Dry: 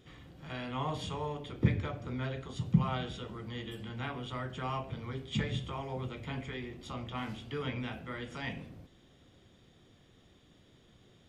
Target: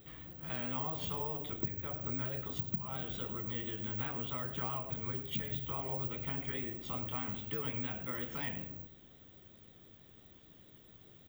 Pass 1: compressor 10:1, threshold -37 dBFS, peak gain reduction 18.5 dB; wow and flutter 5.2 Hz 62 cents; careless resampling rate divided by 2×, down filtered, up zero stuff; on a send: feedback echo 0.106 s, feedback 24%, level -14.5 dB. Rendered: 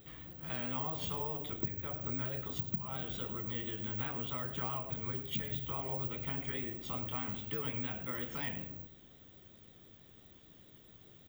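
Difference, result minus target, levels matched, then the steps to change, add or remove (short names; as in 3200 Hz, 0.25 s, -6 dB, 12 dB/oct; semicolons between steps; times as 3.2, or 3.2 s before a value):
8000 Hz band +2.5 dB
add after compressor: high shelf 6500 Hz -5 dB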